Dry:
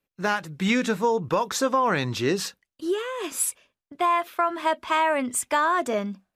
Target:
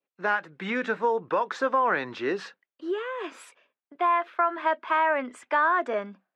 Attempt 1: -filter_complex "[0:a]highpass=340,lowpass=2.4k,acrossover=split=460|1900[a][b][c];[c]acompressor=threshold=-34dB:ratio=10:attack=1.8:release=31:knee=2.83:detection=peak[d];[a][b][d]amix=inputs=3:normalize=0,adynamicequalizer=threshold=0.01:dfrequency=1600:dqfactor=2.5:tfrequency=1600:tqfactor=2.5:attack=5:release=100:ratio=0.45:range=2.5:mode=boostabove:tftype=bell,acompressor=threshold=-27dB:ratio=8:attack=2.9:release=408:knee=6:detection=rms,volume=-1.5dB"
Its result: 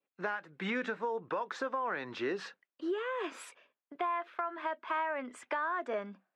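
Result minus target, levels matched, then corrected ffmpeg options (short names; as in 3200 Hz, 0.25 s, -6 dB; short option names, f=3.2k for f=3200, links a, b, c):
compressor: peak gain reduction +13 dB
-filter_complex "[0:a]highpass=340,lowpass=2.4k,acrossover=split=460|1900[a][b][c];[c]acompressor=threshold=-34dB:ratio=10:attack=1.8:release=31:knee=2.83:detection=peak[d];[a][b][d]amix=inputs=3:normalize=0,adynamicequalizer=threshold=0.01:dfrequency=1600:dqfactor=2.5:tfrequency=1600:tqfactor=2.5:attack=5:release=100:ratio=0.45:range=2.5:mode=boostabove:tftype=bell,volume=-1.5dB"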